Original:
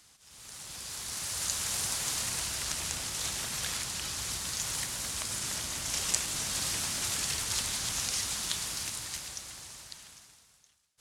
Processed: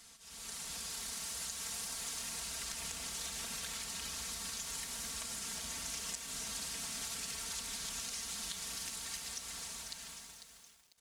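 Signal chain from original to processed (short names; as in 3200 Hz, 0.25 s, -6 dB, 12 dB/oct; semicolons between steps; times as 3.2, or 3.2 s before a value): compressor 6:1, threshold -42 dBFS, peak gain reduction 19 dB; comb 4.4 ms, depth 87%; lo-fi delay 0.497 s, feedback 35%, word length 9-bit, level -9.5 dB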